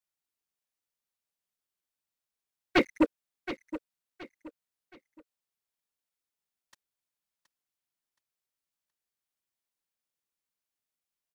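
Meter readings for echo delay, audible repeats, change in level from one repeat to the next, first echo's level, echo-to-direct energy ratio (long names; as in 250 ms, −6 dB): 722 ms, 3, −9.5 dB, −13.0 dB, −12.5 dB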